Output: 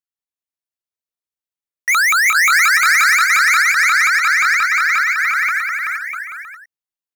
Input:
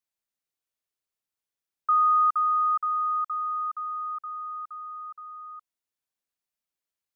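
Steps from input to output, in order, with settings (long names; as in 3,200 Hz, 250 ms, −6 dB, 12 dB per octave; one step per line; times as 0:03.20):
pitch shifter swept by a sawtooth +11.5 semitones, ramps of 177 ms
leveller curve on the samples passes 5
on a send: bouncing-ball delay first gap 380 ms, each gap 0.7×, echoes 5
on the sum: level +4.5 dB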